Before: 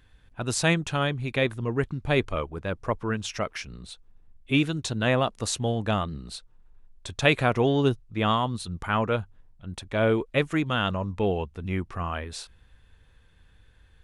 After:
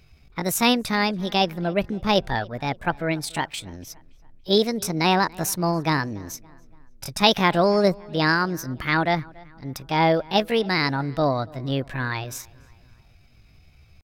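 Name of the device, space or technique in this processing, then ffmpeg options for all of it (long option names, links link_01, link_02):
chipmunk voice: -filter_complex "[0:a]asetrate=64194,aresample=44100,atempo=0.686977,asplit=2[link_01][link_02];[link_02]adelay=285,lowpass=frequency=3000:poles=1,volume=-23.5dB,asplit=2[link_03][link_04];[link_04]adelay=285,lowpass=frequency=3000:poles=1,volume=0.51,asplit=2[link_05][link_06];[link_06]adelay=285,lowpass=frequency=3000:poles=1,volume=0.51[link_07];[link_01][link_03][link_05][link_07]amix=inputs=4:normalize=0,volume=3.5dB"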